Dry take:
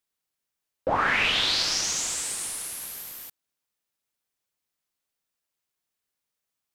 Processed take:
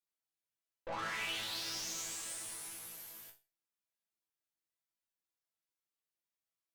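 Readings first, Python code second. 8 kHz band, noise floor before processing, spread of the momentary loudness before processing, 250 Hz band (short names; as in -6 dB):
-13.0 dB, -85 dBFS, 16 LU, -14.0 dB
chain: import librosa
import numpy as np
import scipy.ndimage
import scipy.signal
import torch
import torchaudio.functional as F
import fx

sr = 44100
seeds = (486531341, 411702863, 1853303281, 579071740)

y = fx.tube_stage(x, sr, drive_db=30.0, bias=0.65)
y = fx.resonator_bank(y, sr, root=45, chord='fifth', decay_s=0.29)
y = y * 10.0 ** (4.5 / 20.0)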